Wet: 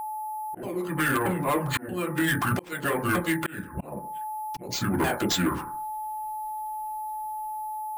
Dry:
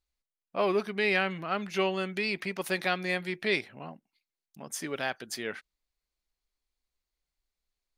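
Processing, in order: repeated pitch sweeps -9 st, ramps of 0.63 s; reverb RT60 0.40 s, pre-delay 3 ms, DRR -2.5 dB; harmonic-percussive split harmonic -15 dB; AGC gain up to 14 dB; low shelf 400 Hz +11 dB; whine 860 Hz -37 dBFS; careless resampling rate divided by 4×, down none, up hold; compressor 12:1, threshold -26 dBFS, peak gain reduction 19.5 dB; auto swell 0.418 s; sine folder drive 6 dB, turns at -15 dBFS; gain -3.5 dB

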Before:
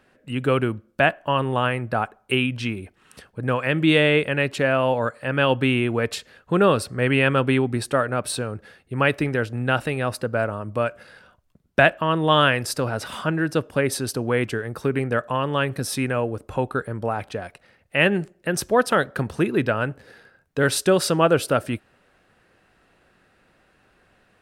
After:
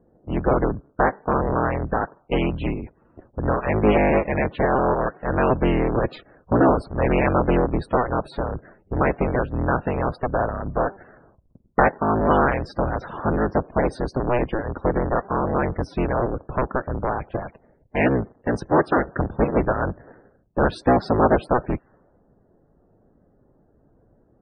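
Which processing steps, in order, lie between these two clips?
cycle switcher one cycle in 3, inverted; LPF 1100 Hz 6 dB/oct; in parallel at -2 dB: compressor, threshold -33 dBFS, peak gain reduction 18 dB; on the sum: loudest bins only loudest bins 64; low-pass opened by the level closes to 490 Hz, open at -20 dBFS; gain +1 dB

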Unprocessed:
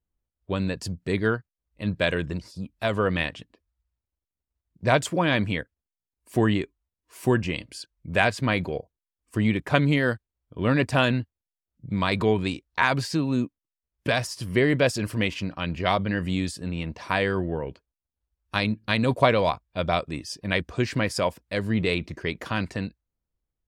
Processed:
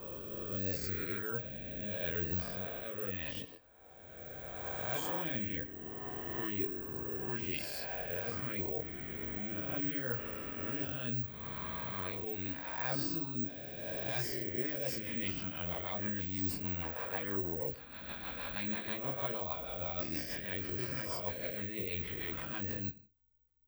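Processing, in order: spectral swells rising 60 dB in 1.45 s; reverse; compressor 4:1, threshold -36 dBFS, peak gain reduction 21 dB; reverse; chorus voices 6, 0.24 Hz, delay 23 ms, depth 2.1 ms; on a send at -16 dB: reverb RT60 0.25 s, pre-delay 85 ms; on the sum: rotary speaker horn 0.75 Hz, later 6.3 Hz, at 14.17; careless resampling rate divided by 2×, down filtered, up zero stuff

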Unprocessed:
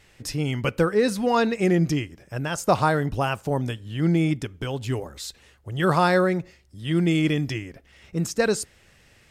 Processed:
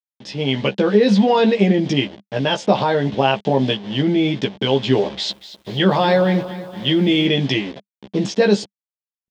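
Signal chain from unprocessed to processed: level-crossing sampler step -39.5 dBFS; AGC gain up to 12 dB; limiter -9.5 dBFS, peak gain reduction 8 dB; speaker cabinet 190–5100 Hz, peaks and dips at 200 Hz +10 dB, 420 Hz +4 dB, 600 Hz +4 dB, 860 Hz +4 dB, 1300 Hz -9 dB, 3300 Hz +10 dB; doubler 15 ms -4 dB; 5.07–7.27 lo-fi delay 0.236 s, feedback 55%, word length 7-bit, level -14 dB; gain -1 dB

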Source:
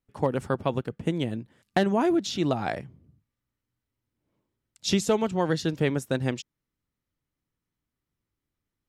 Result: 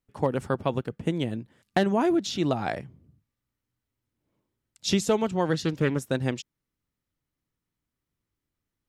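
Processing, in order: 5.53–6.01 Doppler distortion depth 0.22 ms

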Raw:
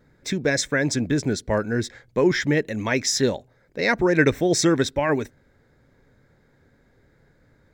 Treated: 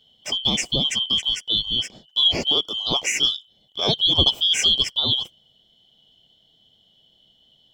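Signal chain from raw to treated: four-band scrambler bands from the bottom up 2413

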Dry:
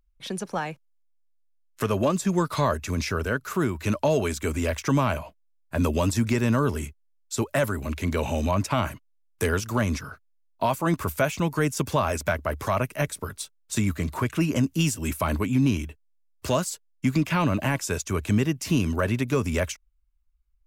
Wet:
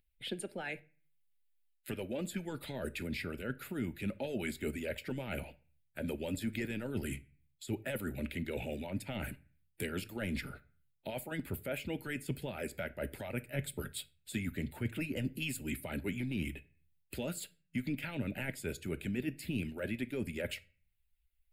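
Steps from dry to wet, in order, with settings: harmonic-percussive split harmonic -14 dB; reverse; compressor, threshold -34 dBFS, peak gain reduction 14.5 dB; reverse; fixed phaser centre 2700 Hz, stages 4; on a send at -14 dB: reverb RT60 0.35 s, pre-delay 3 ms; on the sum: speed mistake 25 fps video run at 24 fps; mismatched tape noise reduction encoder only; gain +1.5 dB

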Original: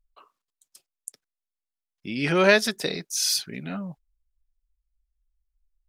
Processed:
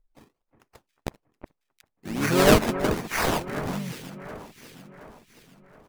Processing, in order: decimation with a swept rate 21×, swing 100% 1.2 Hz; echo with dull and thin repeats by turns 0.361 s, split 2100 Hz, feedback 66%, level -10.5 dB; harmoniser -5 st -4 dB, +3 st -13 dB, +4 st -17 dB; gain -1 dB

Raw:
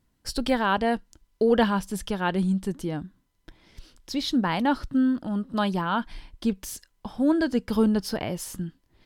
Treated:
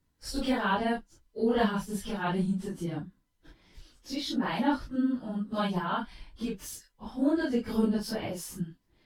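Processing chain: phase scrambler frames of 0.1 s; gain -4.5 dB

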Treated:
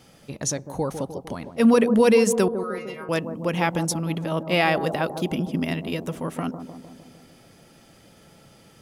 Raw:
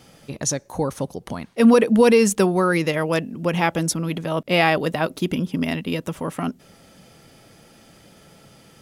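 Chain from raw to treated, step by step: 2.48–3.09 metallic resonator 130 Hz, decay 0.39 s, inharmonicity 0.002; analogue delay 0.152 s, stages 1024, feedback 61%, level -9 dB; gain -3 dB

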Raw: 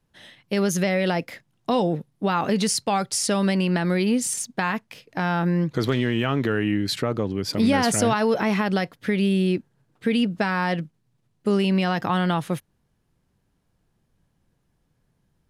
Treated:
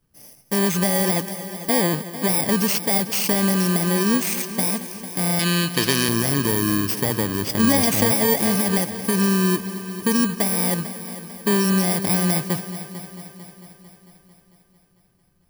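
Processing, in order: FFT order left unsorted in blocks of 32 samples; 5.39–6.09 weighting filter D; multi-head echo 0.224 s, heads first and second, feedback 58%, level -16 dB; gain +2 dB

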